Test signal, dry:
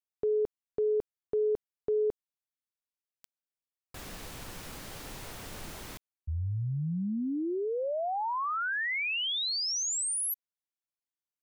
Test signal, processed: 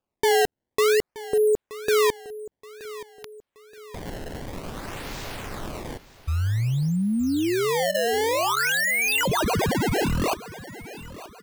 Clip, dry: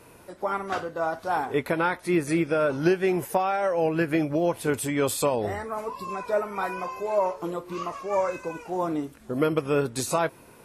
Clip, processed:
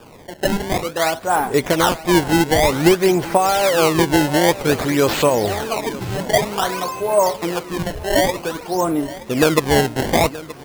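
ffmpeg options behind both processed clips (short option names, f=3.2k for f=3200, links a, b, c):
-af "acrusher=samples=21:mix=1:aa=0.000001:lfo=1:lforange=33.6:lforate=0.53,aecho=1:1:925|1850|2775|3700:0.141|0.0607|0.0261|0.0112,volume=8.5dB"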